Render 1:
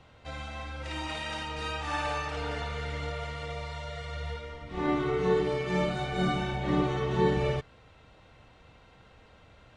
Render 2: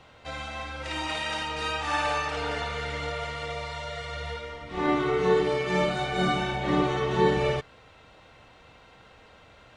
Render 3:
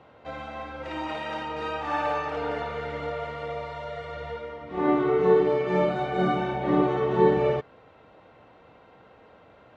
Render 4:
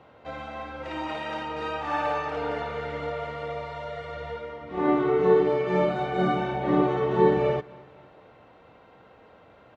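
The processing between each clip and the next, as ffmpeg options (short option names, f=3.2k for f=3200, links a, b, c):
-af "lowshelf=f=240:g=-8,volume=5.5dB"
-af "bandpass=f=410:t=q:w=0.52:csg=0,volume=3.5dB"
-af "aecho=1:1:250|500|750:0.0708|0.0326|0.015"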